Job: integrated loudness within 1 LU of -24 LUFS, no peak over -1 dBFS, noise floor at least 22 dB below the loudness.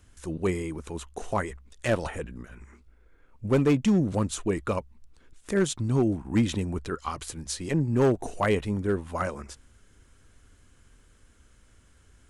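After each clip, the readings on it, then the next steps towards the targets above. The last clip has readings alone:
clipped samples 0.5%; clipping level -16.0 dBFS; loudness -28.0 LUFS; peak level -16.0 dBFS; loudness target -24.0 LUFS
-> clip repair -16 dBFS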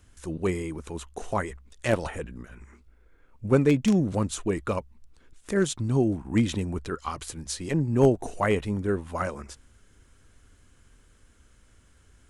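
clipped samples 0.0%; loudness -27.0 LUFS; peak level -7.0 dBFS; loudness target -24.0 LUFS
-> trim +3 dB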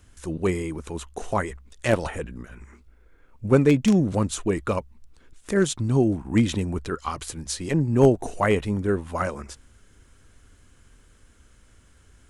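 loudness -24.0 LUFS; peak level -4.0 dBFS; noise floor -56 dBFS

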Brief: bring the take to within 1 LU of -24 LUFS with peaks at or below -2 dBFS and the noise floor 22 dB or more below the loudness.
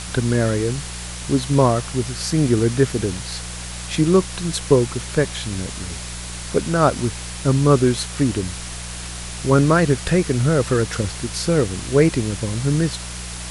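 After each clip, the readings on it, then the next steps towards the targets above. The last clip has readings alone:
hum 60 Hz; highest harmonic 180 Hz; hum level -31 dBFS; noise floor -31 dBFS; noise floor target -43 dBFS; loudness -20.5 LUFS; peak level -1.5 dBFS; loudness target -24.0 LUFS
-> de-hum 60 Hz, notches 3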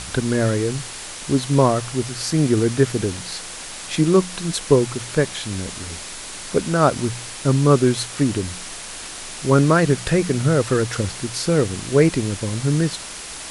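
hum not found; noise floor -34 dBFS; noise floor target -43 dBFS
-> noise reduction 9 dB, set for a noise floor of -34 dBFS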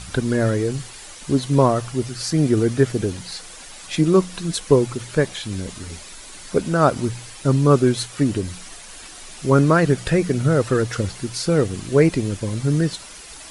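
noise floor -40 dBFS; noise floor target -42 dBFS
-> noise reduction 6 dB, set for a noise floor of -40 dBFS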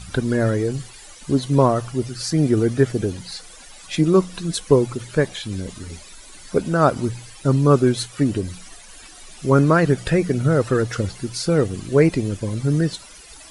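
noise floor -43 dBFS; loudness -20.0 LUFS; peak level -2.5 dBFS; loudness target -24.0 LUFS
-> trim -4 dB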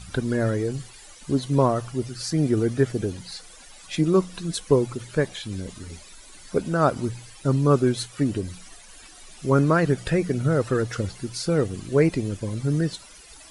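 loudness -24.0 LUFS; peak level -6.5 dBFS; noise floor -47 dBFS

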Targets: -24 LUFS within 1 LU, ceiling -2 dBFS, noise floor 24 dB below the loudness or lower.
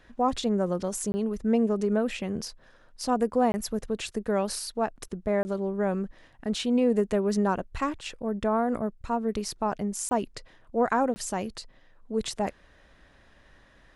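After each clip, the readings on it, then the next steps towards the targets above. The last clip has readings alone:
dropouts 5; longest dropout 20 ms; loudness -28.5 LUFS; peak level -12.0 dBFS; loudness target -24.0 LUFS
-> interpolate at 1.12/3.52/5.43/10.09/11.14 s, 20 ms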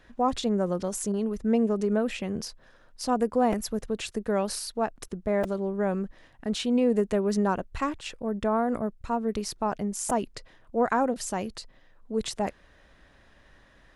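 dropouts 0; loudness -28.5 LUFS; peak level -12.0 dBFS; loudness target -24.0 LUFS
-> trim +4.5 dB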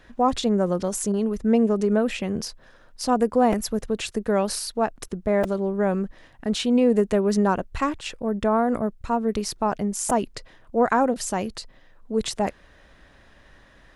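loudness -24.0 LUFS; peak level -7.5 dBFS; noise floor -54 dBFS

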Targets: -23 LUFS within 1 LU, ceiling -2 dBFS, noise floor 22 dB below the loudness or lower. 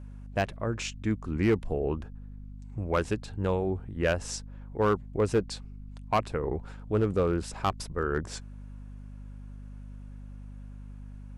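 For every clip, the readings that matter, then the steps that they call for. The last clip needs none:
clipped samples 0.4%; clipping level -17.5 dBFS; hum 50 Hz; highest harmonic 250 Hz; hum level -41 dBFS; loudness -30.5 LUFS; peak level -17.5 dBFS; loudness target -23.0 LUFS
-> clip repair -17.5 dBFS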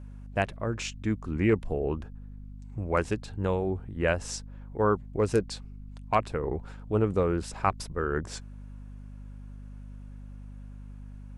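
clipped samples 0.0%; hum 50 Hz; highest harmonic 250 Hz; hum level -41 dBFS
-> de-hum 50 Hz, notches 5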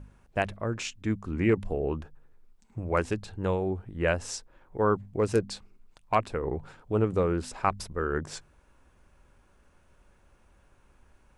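hum not found; loudness -30.0 LUFS; peak level -10.0 dBFS; loudness target -23.0 LUFS
-> trim +7 dB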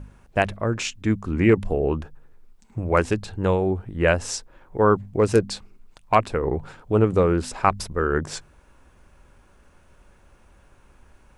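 loudness -23.0 LUFS; peak level -3.0 dBFS; noise floor -56 dBFS

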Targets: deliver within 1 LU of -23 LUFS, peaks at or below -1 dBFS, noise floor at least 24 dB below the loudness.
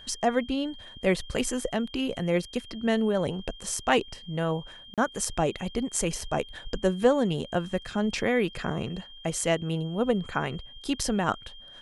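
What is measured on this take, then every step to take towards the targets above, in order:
dropouts 1; longest dropout 37 ms; steady tone 3.2 kHz; tone level -46 dBFS; loudness -28.5 LUFS; peak level -7.5 dBFS; loudness target -23.0 LUFS
-> interpolate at 4.94 s, 37 ms; band-stop 3.2 kHz, Q 30; trim +5.5 dB

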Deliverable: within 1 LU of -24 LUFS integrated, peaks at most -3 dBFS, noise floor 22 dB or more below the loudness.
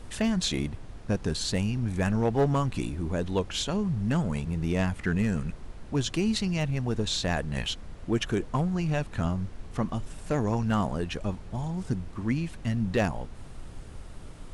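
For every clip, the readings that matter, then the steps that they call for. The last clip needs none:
clipped samples 0.4%; clipping level -17.5 dBFS; noise floor -44 dBFS; noise floor target -51 dBFS; loudness -29.0 LUFS; peak level -17.5 dBFS; loudness target -24.0 LUFS
-> clip repair -17.5 dBFS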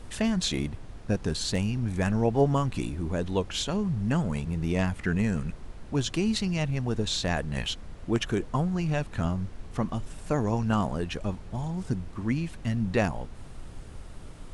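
clipped samples 0.0%; noise floor -44 dBFS; noise floor target -51 dBFS
-> noise print and reduce 7 dB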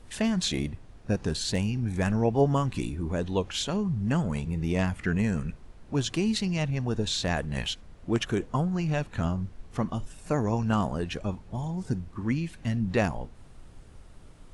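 noise floor -50 dBFS; noise floor target -51 dBFS
-> noise print and reduce 6 dB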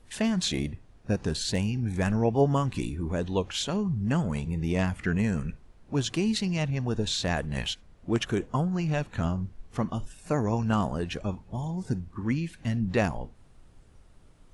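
noise floor -55 dBFS; loudness -29.0 LUFS; peak level -10.5 dBFS; loudness target -24.0 LUFS
-> trim +5 dB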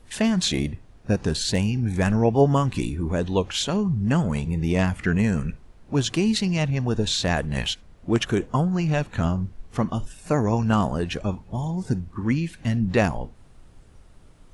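loudness -24.0 LUFS; peak level -5.5 dBFS; noise floor -50 dBFS

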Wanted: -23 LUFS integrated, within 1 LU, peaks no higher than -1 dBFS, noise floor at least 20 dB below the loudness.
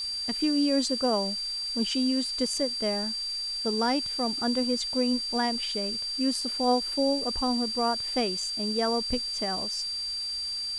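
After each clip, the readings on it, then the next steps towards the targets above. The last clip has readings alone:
steady tone 4.7 kHz; tone level -30 dBFS; noise floor -33 dBFS; noise floor target -47 dBFS; loudness -27.0 LUFS; peak level -14.0 dBFS; loudness target -23.0 LUFS
-> band-stop 4.7 kHz, Q 30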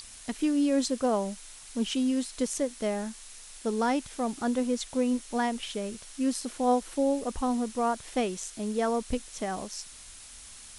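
steady tone not found; noise floor -48 dBFS; noise floor target -50 dBFS
-> noise reduction 6 dB, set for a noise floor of -48 dBFS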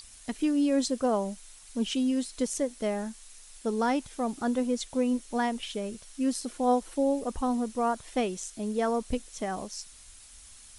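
noise floor -51 dBFS; loudness -30.0 LUFS; peak level -15.5 dBFS; loudness target -23.0 LUFS
-> trim +7 dB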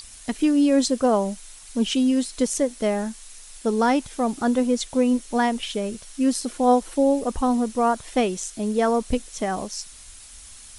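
loudness -23.0 LUFS; peak level -8.5 dBFS; noise floor -44 dBFS

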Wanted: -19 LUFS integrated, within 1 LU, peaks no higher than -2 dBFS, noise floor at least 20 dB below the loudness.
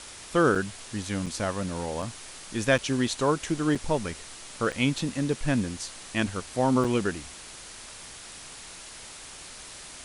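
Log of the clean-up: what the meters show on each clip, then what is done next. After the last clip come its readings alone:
dropouts 7; longest dropout 5.7 ms; noise floor -44 dBFS; noise floor target -48 dBFS; loudness -28.0 LUFS; peak level -9.0 dBFS; loudness target -19.0 LUFS
-> interpolate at 0.55/1.26/2.02/2.78/3.75/4.72/6.84 s, 5.7 ms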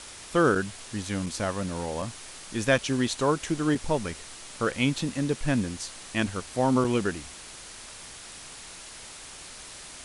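dropouts 0; noise floor -44 dBFS; noise floor target -48 dBFS
-> noise reduction 6 dB, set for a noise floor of -44 dBFS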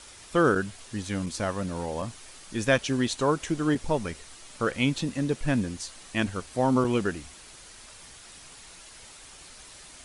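noise floor -49 dBFS; loudness -28.0 LUFS; peak level -9.0 dBFS; loudness target -19.0 LUFS
-> trim +9 dB; peak limiter -2 dBFS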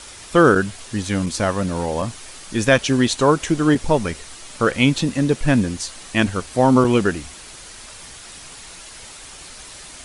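loudness -19.0 LUFS; peak level -2.0 dBFS; noise floor -40 dBFS

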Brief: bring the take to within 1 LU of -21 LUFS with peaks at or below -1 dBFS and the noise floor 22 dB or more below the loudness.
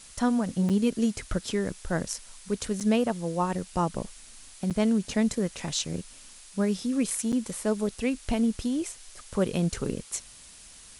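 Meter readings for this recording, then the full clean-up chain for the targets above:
dropouts 4; longest dropout 7.5 ms; noise floor -50 dBFS; noise floor target -51 dBFS; loudness -28.5 LUFS; peak level -11.5 dBFS; loudness target -21.0 LUFS
-> interpolate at 0.69/2.80/4.70/7.32 s, 7.5 ms; noise reduction 6 dB, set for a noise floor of -50 dBFS; trim +7.5 dB

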